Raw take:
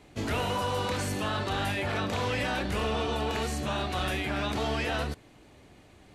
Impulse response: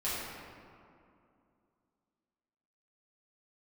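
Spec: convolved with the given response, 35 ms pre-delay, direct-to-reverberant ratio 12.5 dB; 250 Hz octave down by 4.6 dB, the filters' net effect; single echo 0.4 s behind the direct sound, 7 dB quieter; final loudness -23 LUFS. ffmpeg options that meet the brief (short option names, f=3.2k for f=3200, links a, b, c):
-filter_complex "[0:a]equalizer=f=250:t=o:g=-6,aecho=1:1:400:0.447,asplit=2[a][b];[1:a]atrim=start_sample=2205,adelay=35[c];[b][c]afir=irnorm=-1:irlink=0,volume=-19.5dB[d];[a][d]amix=inputs=2:normalize=0,volume=7dB"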